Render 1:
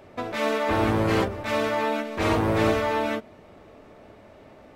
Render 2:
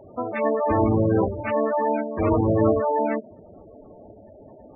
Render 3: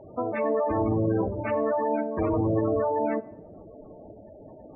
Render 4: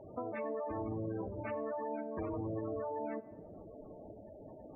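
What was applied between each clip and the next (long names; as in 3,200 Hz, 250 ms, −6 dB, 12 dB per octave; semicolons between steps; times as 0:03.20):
gate on every frequency bin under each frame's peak −10 dB strong; level +4 dB
brickwall limiter −18 dBFS, peak gain reduction 10 dB; low-pass filter 1,800 Hz 6 dB per octave; convolution reverb RT60 0.90 s, pre-delay 6 ms, DRR 14 dB
downward compressor 2.5 to 1, threshold −35 dBFS, peak gain reduction 9.5 dB; level −5 dB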